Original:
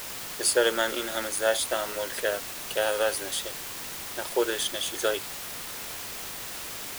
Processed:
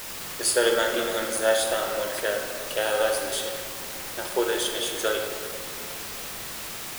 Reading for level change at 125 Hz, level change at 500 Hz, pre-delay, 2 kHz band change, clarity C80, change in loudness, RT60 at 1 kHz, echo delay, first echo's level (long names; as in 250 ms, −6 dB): +3.0 dB, +3.0 dB, 19 ms, +2.0 dB, 5.0 dB, +2.0 dB, 2.2 s, no echo audible, no echo audible